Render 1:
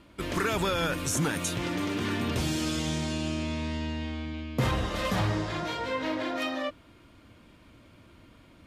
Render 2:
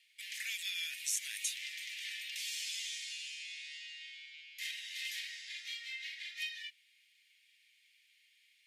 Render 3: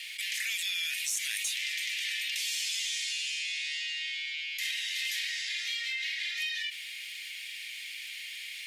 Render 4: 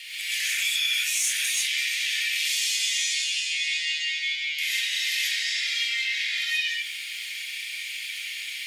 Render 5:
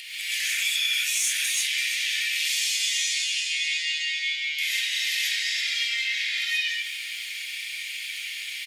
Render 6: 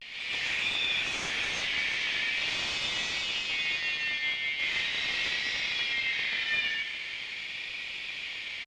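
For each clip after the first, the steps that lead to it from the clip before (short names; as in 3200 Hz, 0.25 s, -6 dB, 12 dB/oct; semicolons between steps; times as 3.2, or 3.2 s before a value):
steep high-pass 1900 Hz 72 dB/oct; gain -3.5 dB
in parallel at -6 dB: sine folder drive 5 dB, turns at -22 dBFS; on the sum: fast leveller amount 70%; gain -4.5 dB
non-linear reverb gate 0.16 s rising, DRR -6.5 dB
upward compressor, threshold -42 dBFS; echo 0.338 s -13.5 dB
CVSD 64 kbps; vibrato 0.41 Hz 64 cents; air absorption 200 m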